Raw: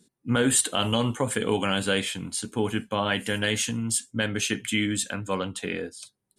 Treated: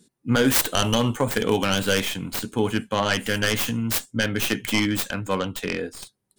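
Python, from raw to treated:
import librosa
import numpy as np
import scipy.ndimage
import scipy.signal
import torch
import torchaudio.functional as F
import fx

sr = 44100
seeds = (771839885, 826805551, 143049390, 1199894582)

y = fx.tracing_dist(x, sr, depth_ms=0.46)
y = y * 10.0 ** (3.5 / 20.0)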